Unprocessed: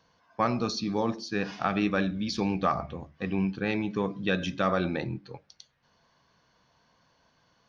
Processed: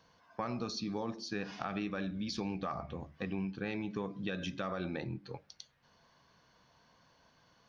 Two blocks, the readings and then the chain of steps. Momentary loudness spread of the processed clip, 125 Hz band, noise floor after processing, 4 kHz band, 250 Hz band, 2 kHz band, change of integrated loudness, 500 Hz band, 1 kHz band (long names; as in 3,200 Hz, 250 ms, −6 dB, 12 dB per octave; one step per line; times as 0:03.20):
10 LU, −8.5 dB, −68 dBFS, −7.0 dB, −9.0 dB, −10.0 dB, −9.5 dB, −10.0 dB, −11.0 dB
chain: brickwall limiter −16.5 dBFS, peak gain reduction 4 dB
downward compressor 2.5 to 1, threshold −38 dBFS, peak gain reduction 10 dB